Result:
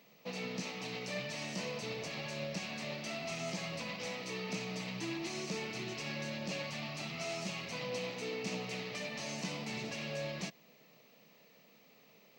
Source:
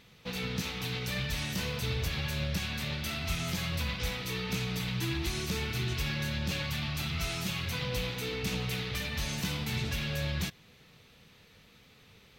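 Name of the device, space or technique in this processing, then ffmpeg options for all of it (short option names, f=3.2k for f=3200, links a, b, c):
old television with a line whistle: -af "highpass=f=180:w=0.5412,highpass=f=180:w=1.3066,equalizer=f=630:t=q:w=4:g=9,equalizer=f=1.5k:t=q:w=4:g=-9,equalizer=f=3.5k:t=q:w=4:g=-9,lowpass=f=7.4k:w=0.5412,lowpass=f=7.4k:w=1.3066,aeval=exprs='val(0)+0.000631*sin(2*PI*15734*n/s)':c=same,volume=-3dB"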